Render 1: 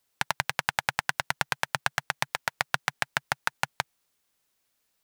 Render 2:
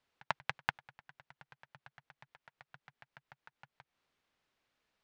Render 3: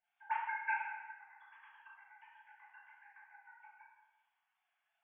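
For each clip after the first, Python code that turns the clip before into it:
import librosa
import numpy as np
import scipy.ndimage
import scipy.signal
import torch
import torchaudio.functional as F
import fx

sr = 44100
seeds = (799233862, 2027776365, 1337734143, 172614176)

y1 = scipy.signal.sosfilt(scipy.signal.butter(2, 3200.0, 'lowpass', fs=sr, output='sos'), x)
y1 = fx.auto_swell(y1, sr, attack_ms=180.0)
y2 = fx.sine_speech(y1, sr)
y2 = fx.room_shoebox(y2, sr, seeds[0], volume_m3=860.0, walls='mixed', distance_m=5.5)
y2 = y2 * 10.0 ** (-8.5 / 20.0)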